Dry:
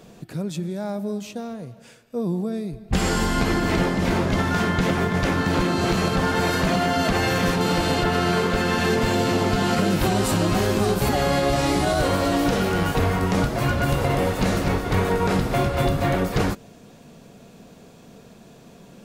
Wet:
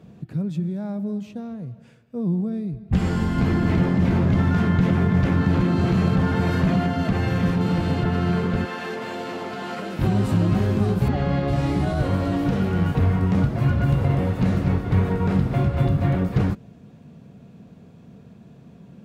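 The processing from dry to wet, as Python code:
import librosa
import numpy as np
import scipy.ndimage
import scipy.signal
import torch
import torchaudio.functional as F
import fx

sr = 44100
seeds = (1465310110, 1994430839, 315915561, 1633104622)

y = fx.env_flatten(x, sr, amount_pct=50, at=(3.38, 6.87))
y = fx.highpass(y, sr, hz=470.0, slope=12, at=(8.65, 9.99))
y = fx.lowpass(y, sr, hz=4700.0, slope=12, at=(11.08, 11.48))
y = scipy.signal.sosfilt(scipy.signal.butter(2, 80.0, 'highpass', fs=sr, output='sos'), y)
y = fx.bass_treble(y, sr, bass_db=14, treble_db=-10)
y = y * librosa.db_to_amplitude(-7.0)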